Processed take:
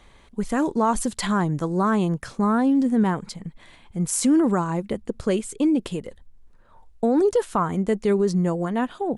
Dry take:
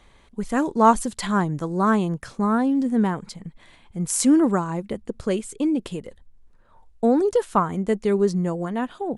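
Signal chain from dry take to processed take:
brickwall limiter −14.5 dBFS, peak gain reduction 10 dB
level +2 dB

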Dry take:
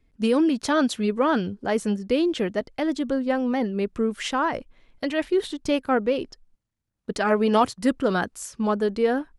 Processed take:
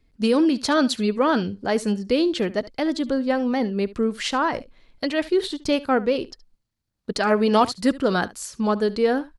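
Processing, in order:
parametric band 4,400 Hz +7.5 dB 0.4 octaves
single-tap delay 71 ms −19 dB
level +1.5 dB

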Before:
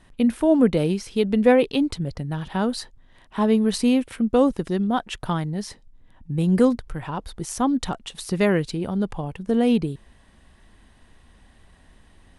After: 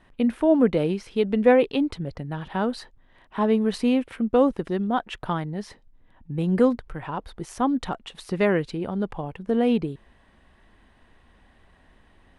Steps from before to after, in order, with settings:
bass and treble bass −5 dB, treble −12 dB

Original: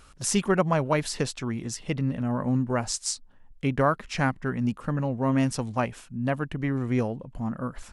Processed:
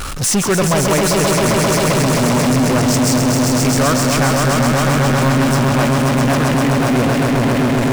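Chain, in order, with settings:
echo that builds up and dies away 132 ms, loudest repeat 5, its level −6 dB
power curve on the samples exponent 0.35

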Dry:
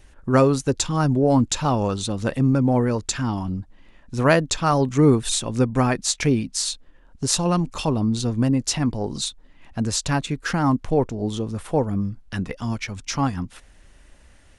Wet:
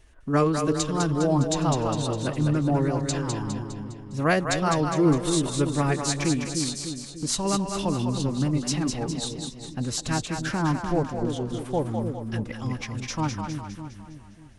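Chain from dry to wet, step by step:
phase-vocoder pitch shift with formants kept +2 semitones
echo with a time of its own for lows and highs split 470 Hz, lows 298 ms, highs 204 ms, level −5 dB
level −5 dB

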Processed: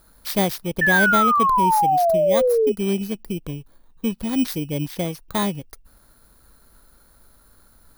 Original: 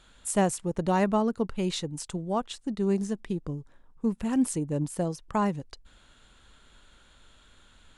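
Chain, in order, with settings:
samples in bit-reversed order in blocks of 16 samples
sound drawn into the spectrogram fall, 0:00.81–0:02.72, 410–1,800 Hz −21 dBFS
level +3.5 dB

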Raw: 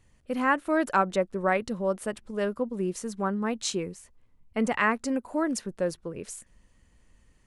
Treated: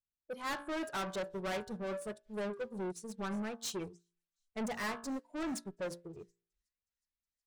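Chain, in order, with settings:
low-pass that shuts in the quiet parts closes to 360 Hz, open at −29.5 dBFS
noise reduction from a noise print of the clip's start 16 dB
hum removal 57.64 Hz, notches 30
soft clipping −34.5 dBFS, distortion −4 dB
delay with a high-pass on its return 366 ms, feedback 78%, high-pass 3,100 Hz, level −22 dB
expander for the loud parts 2.5 to 1, over −53 dBFS
level +1 dB

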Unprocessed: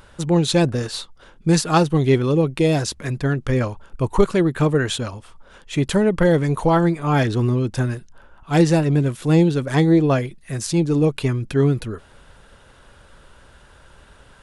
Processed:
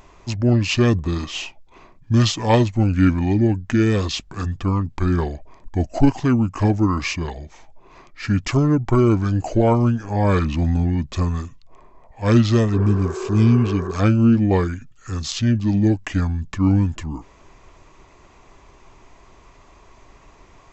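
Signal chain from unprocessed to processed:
healed spectral selection 0:08.89–0:09.64, 490–2,800 Hz after
change of speed 0.696×

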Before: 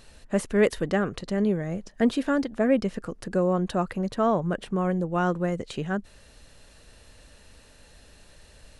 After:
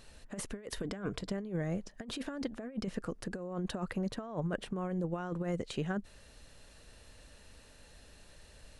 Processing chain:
0:00.82–0:01.31: EQ curve with evenly spaced ripples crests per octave 1.7, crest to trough 7 dB
compressor whose output falls as the input rises −27 dBFS, ratio −0.5
level −8 dB

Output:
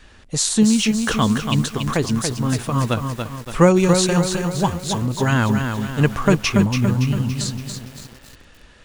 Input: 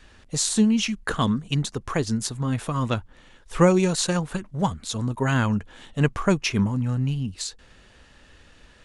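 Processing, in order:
feedback echo at a low word length 283 ms, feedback 55%, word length 7 bits, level −5.5 dB
level +4 dB

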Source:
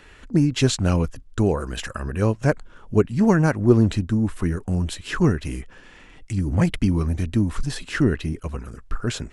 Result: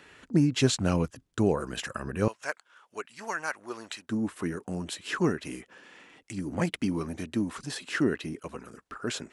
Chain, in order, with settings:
high-pass filter 130 Hz 12 dB per octave, from 0:02.28 1,100 Hz, from 0:04.09 240 Hz
level −3.5 dB

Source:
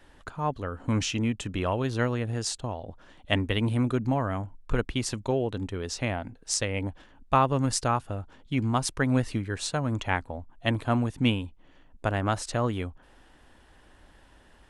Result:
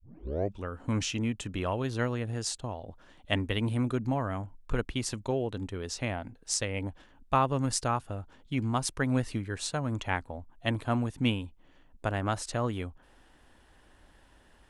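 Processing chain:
turntable start at the beginning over 0.67 s
high-shelf EQ 9,100 Hz +4 dB
level −3.5 dB

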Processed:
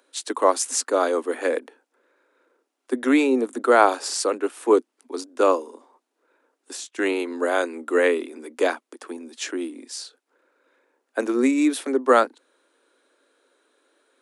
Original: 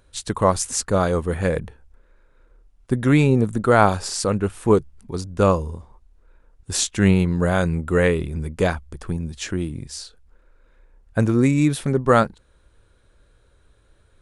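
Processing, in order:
Butterworth high-pass 250 Hz 96 dB per octave
0:05.68–0:06.99: downward compressor 3 to 1, threshold −38 dBFS, peak gain reduction 14.5 dB

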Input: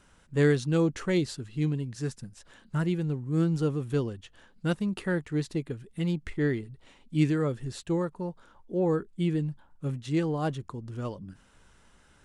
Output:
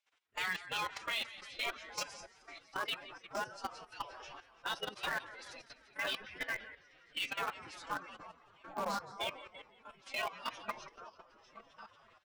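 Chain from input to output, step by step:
feedback delay that plays each chunk backwards 696 ms, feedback 50%, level −8 dB
noise reduction from a noise print of the clip's start 18 dB
flanger 0.36 Hz, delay 6.6 ms, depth 6.6 ms, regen +7%
gate on every frequency bin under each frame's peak −20 dB weak
Bessel low-pass filter 2,300 Hz, order 2
tilt shelving filter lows −8.5 dB, about 800 Hz
on a send: echo with shifted repeats 170 ms, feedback 51%, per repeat −44 Hz, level −13 dB
on the sum: output level in coarse steps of 13 dB
phase-vocoder pitch shift with formants kept +4 semitones
in parallel at −11.5 dB: bit reduction 8 bits
on the sum: level +15 dB

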